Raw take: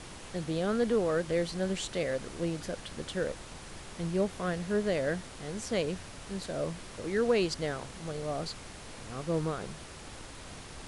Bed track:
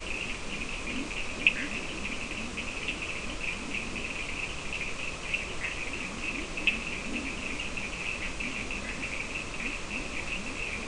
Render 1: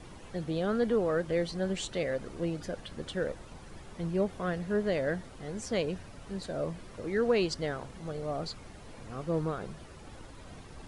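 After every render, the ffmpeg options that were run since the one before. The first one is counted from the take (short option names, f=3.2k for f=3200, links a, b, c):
-af "afftdn=nr=10:nf=-47"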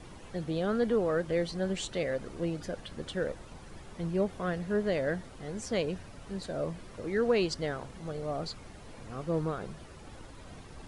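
-af anull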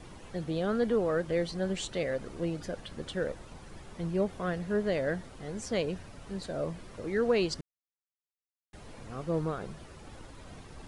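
-filter_complex "[0:a]asplit=3[a][b][c];[a]atrim=end=7.61,asetpts=PTS-STARTPTS,afade=t=out:st=7.606:d=0.004:c=hsin[d];[b]atrim=start=7.61:end=8.73,asetpts=PTS-STARTPTS,volume=0[e];[c]atrim=start=8.73,asetpts=PTS-STARTPTS,afade=t=in:d=0.004:c=hsin[f];[d][e][f]concat=n=3:v=0:a=1"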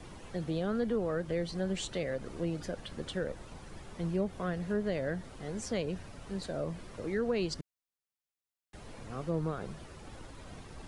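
-filter_complex "[0:a]acrossover=split=240[a][b];[b]acompressor=threshold=-35dB:ratio=2[c];[a][c]amix=inputs=2:normalize=0"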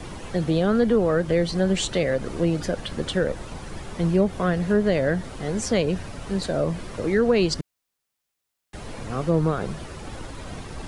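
-af "volume=12dB"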